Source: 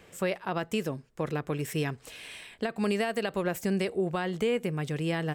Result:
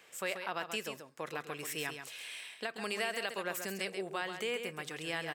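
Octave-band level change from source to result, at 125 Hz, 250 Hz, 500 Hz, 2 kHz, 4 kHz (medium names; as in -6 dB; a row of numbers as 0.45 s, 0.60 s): -18.0 dB, -14.5 dB, -9.0 dB, -1.0 dB, 0.0 dB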